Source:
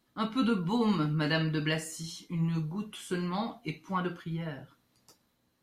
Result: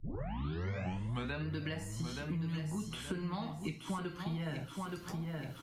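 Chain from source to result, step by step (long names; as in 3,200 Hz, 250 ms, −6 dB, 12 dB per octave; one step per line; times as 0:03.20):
turntable start at the beginning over 1.48 s
downward compressor 2.5 to 1, threshold −43 dBFS, peak gain reduction 13.5 dB
on a send: repeating echo 874 ms, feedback 30%, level −9.5 dB
on the sum: multiband upward and downward compressor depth 100%
level +2.5 dB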